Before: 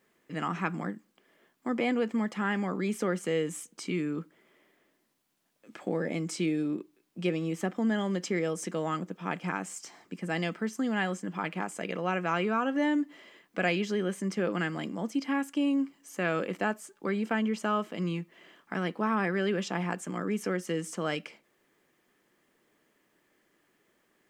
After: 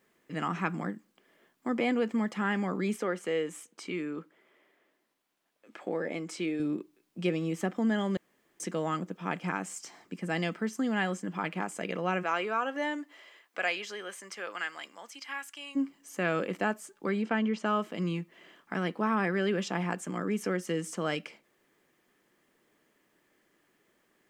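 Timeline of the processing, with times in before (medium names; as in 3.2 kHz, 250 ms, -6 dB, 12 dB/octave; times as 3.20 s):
2.96–6.60 s: tone controls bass -11 dB, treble -6 dB
8.17–8.60 s: room tone
12.22–15.75 s: high-pass 390 Hz -> 1.5 kHz
17.22–17.66 s: low-pass 5.4 kHz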